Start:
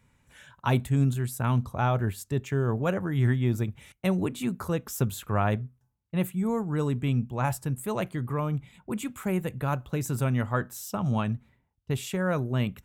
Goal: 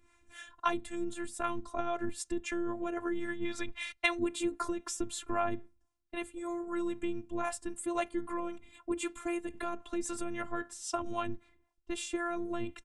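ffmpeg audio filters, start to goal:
-filter_complex "[0:a]asettb=1/sr,asplit=3[a][b][c];[a]atrim=end=3.454[d];[b]atrim=start=3.45:end=4.19,asetpts=PTS-STARTPTS,afade=t=in:d=0.004:c=qsin,afade=t=out:st=0.736:d=0.004:c=qsin,equalizer=f=125:t=o:w=1:g=4,equalizer=f=250:t=o:w=1:g=-7,equalizer=f=1k:t=o:w=1:g=6,equalizer=f=2k:t=o:w=1:g=9,equalizer=f=4k:t=o:w=1:g=10[e];[c]atrim=start=4.186[f];[d][e]acrossfade=d=0.004:c1=hsin:c2=qsin[g];[g][f]acrossfade=d=0.004:c1=qsin:c2=hsin,acompressor=threshold=-28dB:ratio=6,acrossover=split=410[h][i];[h]aeval=exprs='val(0)*(1-0.7/2+0.7/2*cos(2*PI*3.8*n/s))':c=same[j];[i]aeval=exprs='val(0)*(1-0.7/2-0.7/2*cos(2*PI*3.8*n/s))':c=same[k];[j][k]amix=inputs=2:normalize=0,afftfilt=real='hypot(re,im)*cos(PI*b)':imag='0':win_size=512:overlap=0.75,aresample=22050,aresample=44100,volume=7.5dB"

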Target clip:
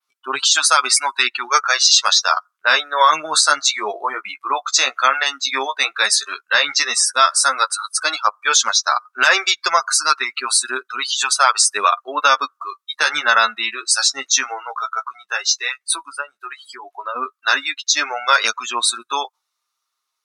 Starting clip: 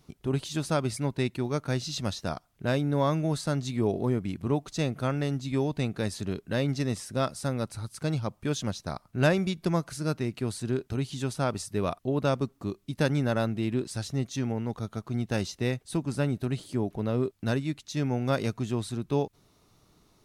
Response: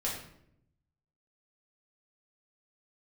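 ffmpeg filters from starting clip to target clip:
-filter_complex "[0:a]flanger=delay=7.4:depth=7.8:regen=21:speed=0.1:shape=sinusoidal,asettb=1/sr,asplit=3[a][b][c];[a]atrim=end=15.004[d];[b]atrim=start=15:end=17.16,asetpts=PTS-STARTPTS,afade=t=in:d=0.004:c=qsin,afade=t=out:st=2.156:d=0.004:c=qsin,acompressor=threshold=-34dB:ratio=12[e];[c]atrim=start=17.156[f];[d][e]acrossfade=d=0.004:c1=hsin:c2=qsin[g];[g][f]acrossfade=d=0.004:c1=qsin:c2=hsin,highpass=f=1.2k:t=q:w=2.3,adynamicequalizer=threshold=0.002:dfrequency=6300:dqfactor=0.91:tfrequency=6300:tqfactor=0.91:attack=5:release=100:ratio=0.375:range=2:mode=boostabove:tftype=bell,afftdn=nr=33:nf=-45,highshelf=f=2.2k:g=9,alimiter=level_in=20.5dB:limit=-1dB:release=50:level=0:latency=1,volume=-1dB"

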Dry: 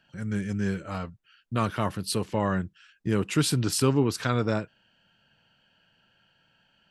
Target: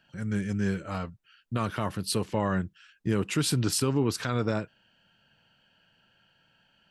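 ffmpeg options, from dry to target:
-af "alimiter=limit=-15.5dB:level=0:latency=1:release=96"

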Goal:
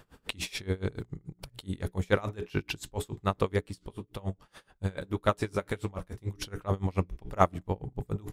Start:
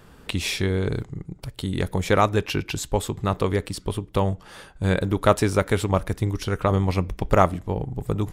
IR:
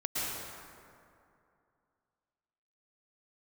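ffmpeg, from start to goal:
-filter_complex "[0:a]bandreject=f=60:t=h:w=6,bandreject=f=120:t=h:w=6,bandreject=f=180:t=h:w=6,bandreject=f=240:t=h:w=6,bandreject=f=300:t=h:w=6,bandreject=f=360:t=h:w=6,bandreject=f=420:t=h:w=6,asettb=1/sr,asplit=3[a][b][c];[a]atrim=end=3.664[d];[b]atrim=start=3.66:end=6.32,asetpts=PTS-STARTPTS,afade=t=in:d=0.004:c=qsin,afade=t=out:st=2.656:d=0.004:c=qsin,flanger=delay=8.7:depth=6:regen=-48:speed=1.8:shape=sinusoidal[e];[c]atrim=start=6.316[f];[d][e]acrossfade=d=0.004:c1=hsin:c2=qsin[g];[g][f]acrossfade=d=0.004:c1=qsin:c2=hsin,aeval=exprs='val(0)*pow(10,-26*(0.5-0.5*cos(2*PI*7*n/s))/20)':c=same,volume=-2dB"

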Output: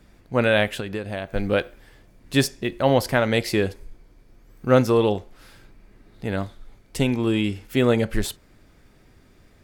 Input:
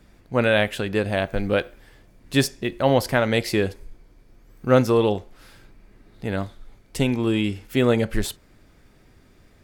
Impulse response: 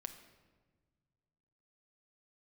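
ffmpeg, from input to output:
-filter_complex "[0:a]asettb=1/sr,asplit=3[a][b][c];[a]atrim=end=0.774[d];[b]atrim=start=0.77:end=1.35,asetpts=PTS-STARTPTS,afade=t=in:d=0.004:c=qsin,afade=t=out:st=0.576:d=0.004:c=qsin,acompressor=threshold=-26dB:ratio=6[e];[c]atrim=start=1.346[f];[d][e]acrossfade=d=0.004:c1=hsin:c2=qsin[g];[g][f]acrossfade=d=0.004:c1=qsin:c2=hsin"

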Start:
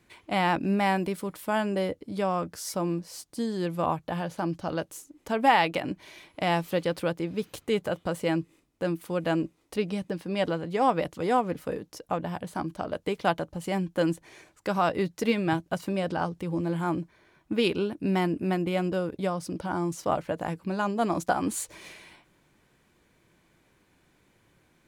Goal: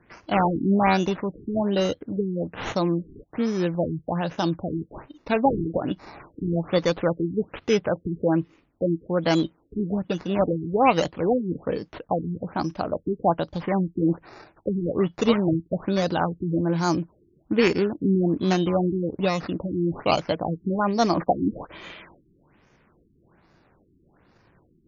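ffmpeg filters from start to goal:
-af "acrusher=samples=11:mix=1:aa=0.000001:lfo=1:lforange=6.6:lforate=0.22,afftfilt=real='re*lt(b*sr/1024,400*pow(7100/400,0.5+0.5*sin(2*PI*1.2*pts/sr)))':imag='im*lt(b*sr/1024,400*pow(7100/400,0.5+0.5*sin(2*PI*1.2*pts/sr)))':win_size=1024:overlap=0.75,volume=5.5dB"

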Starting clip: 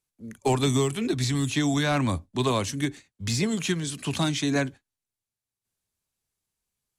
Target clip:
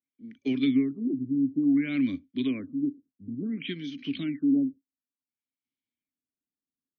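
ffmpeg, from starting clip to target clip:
-filter_complex "[0:a]asplit=3[a][b][c];[a]bandpass=f=270:t=q:w=8,volume=0dB[d];[b]bandpass=f=2.29k:t=q:w=8,volume=-6dB[e];[c]bandpass=f=3.01k:t=q:w=8,volume=-9dB[f];[d][e][f]amix=inputs=3:normalize=0,afftfilt=real='re*lt(b*sr/1024,540*pow(6700/540,0.5+0.5*sin(2*PI*0.57*pts/sr)))':imag='im*lt(b*sr/1024,540*pow(6700/540,0.5+0.5*sin(2*PI*0.57*pts/sr)))':win_size=1024:overlap=0.75,volume=6dB"

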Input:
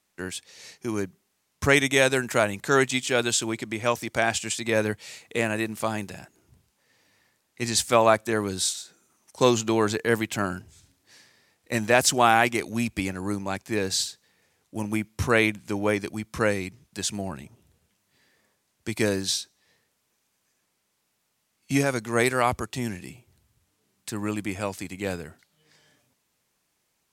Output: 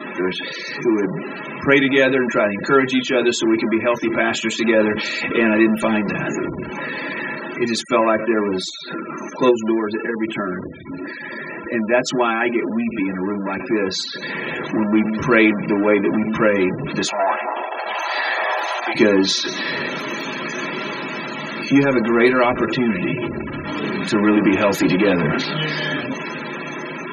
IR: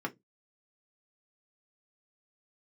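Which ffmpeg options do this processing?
-filter_complex "[0:a]aeval=exprs='val(0)+0.5*0.106*sgn(val(0))':c=same,asplit=3[a][b][c];[a]afade=t=out:st=9.49:d=0.02[d];[b]acompressor=threshold=-20dB:ratio=3,afade=t=in:st=9.49:d=0.02,afade=t=out:st=10.54:d=0.02[e];[c]afade=t=in:st=10.54:d=0.02[f];[d][e][f]amix=inputs=3:normalize=0,asettb=1/sr,asplit=3[g][h][i];[g]atrim=end=17.084[j];[h]atrim=start=17.08:end=18.95,asetpts=PTS-STARTPTS,afade=t=in:d=0.004:c=qsin,afade=t=out:st=1.866:d=0.004:c=qsin,highpass=f=750:t=q:w=4.9[k];[i]atrim=start=18.946[l];[j][k]acrossfade=d=0.004:c1=hsin:c2=qsin[m];[m][l]acrossfade=d=0.004:c1=qsin:c2=hsin[n];[1:a]atrim=start_sample=2205,asetrate=52920,aresample=44100[o];[n][o]afir=irnorm=-1:irlink=0,dynaudnorm=f=180:g=21:m=15.5dB,afftfilt=real='re*gte(hypot(re,im),0.0562)':imag='im*gte(hypot(re,im),0.0562)':win_size=1024:overlap=0.75,adynamicequalizer=threshold=0.0224:dfrequency=2500:dqfactor=0.7:tfrequency=2500:tqfactor=0.7:attack=5:release=100:ratio=0.375:range=3.5:mode=boostabove:tftype=highshelf,volume=-2dB"

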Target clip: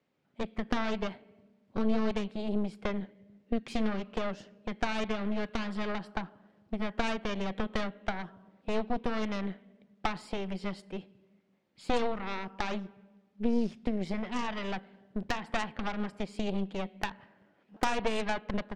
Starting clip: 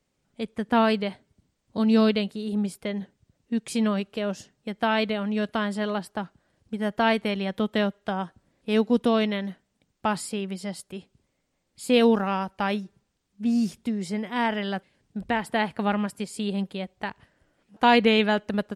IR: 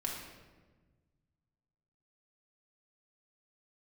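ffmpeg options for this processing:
-filter_complex "[0:a]highpass=150,lowpass=3.1k,acompressor=threshold=-29dB:ratio=3,asplit=2[a][b];[1:a]atrim=start_sample=2205,adelay=37[c];[b][c]afir=irnorm=-1:irlink=0,volume=-21.5dB[d];[a][d]amix=inputs=2:normalize=0,aeval=exprs='0.15*(cos(1*acos(clip(val(0)/0.15,-1,1)))-cos(1*PI/2))+0.0596*(cos(4*acos(clip(val(0)/0.15,-1,1)))-cos(4*PI/2))':c=same"

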